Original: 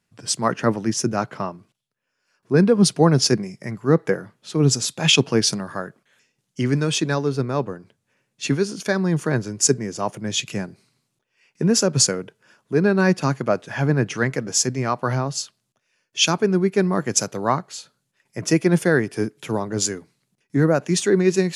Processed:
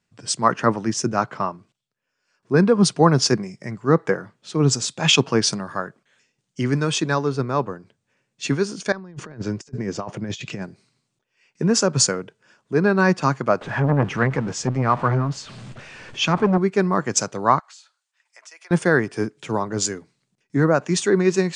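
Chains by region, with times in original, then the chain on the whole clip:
8.92–10.62 s: compressor with a negative ratio -28 dBFS, ratio -0.5 + distance through air 100 m
13.61–16.58 s: jump at every zero crossing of -31.5 dBFS + tone controls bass +6 dB, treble -13 dB + transformer saturation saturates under 460 Hz
17.59–18.71 s: high-pass 820 Hz 24 dB/octave + compression 4:1, threshold -43 dBFS
whole clip: steep low-pass 9.2 kHz 72 dB/octave; dynamic bell 1.1 kHz, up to +7 dB, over -37 dBFS, Q 1.4; trim -1 dB

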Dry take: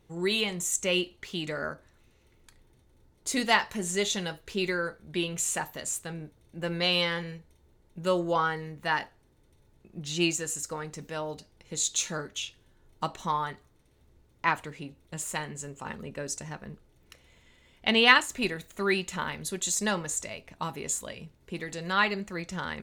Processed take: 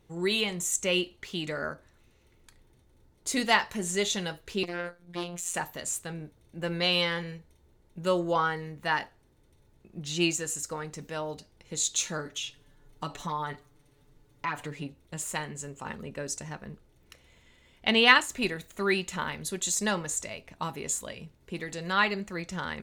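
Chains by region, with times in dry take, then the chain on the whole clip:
4.63–5.54 s: robot voice 174 Hz + transformer saturation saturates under 2 kHz
12.25–14.87 s: comb 6.9 ms, depth 84% + compression 2.5:1, threshold -31 dBFS
whole clip: none

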